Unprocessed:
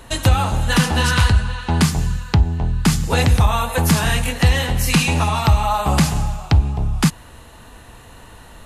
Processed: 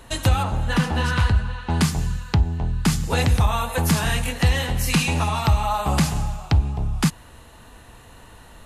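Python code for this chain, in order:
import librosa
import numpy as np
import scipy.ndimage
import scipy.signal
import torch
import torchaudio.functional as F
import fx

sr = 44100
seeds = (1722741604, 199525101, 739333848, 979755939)

y = fx.high_shelf(x, sr, hz=3700.0, db=-10.5, at=(0.43, 1.7))
y = F.gain(torch.from_numpy(y), -4.0).numpy()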